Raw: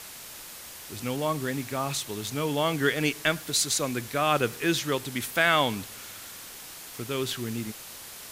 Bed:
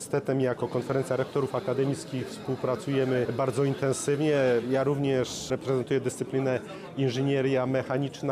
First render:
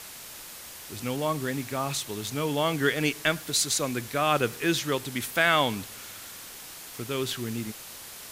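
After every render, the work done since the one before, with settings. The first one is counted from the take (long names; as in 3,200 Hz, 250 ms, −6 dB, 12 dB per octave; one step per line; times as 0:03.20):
no processing that can be heard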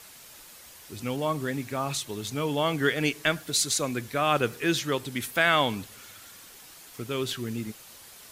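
broadband denoise 7 dB, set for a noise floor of −43 dBFS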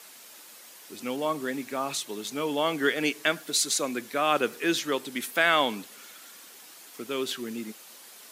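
high-pass filter 210 Hz 24 dB per octave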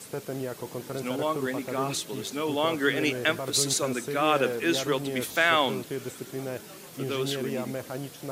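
mix in bed −7.5 dB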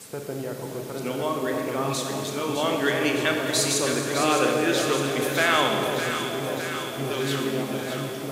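delay that swaps between a low-pass and a high-pass 305 ms, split 910 Hz, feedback 84%, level −6.5 dB
four-comb reverb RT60 2 s, combs from 29 ms, DRR 3 dB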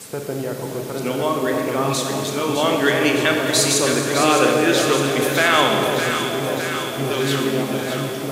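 level +6 dB
brickwall limiter −3 dBFS, peak gain reduction 2.5 dB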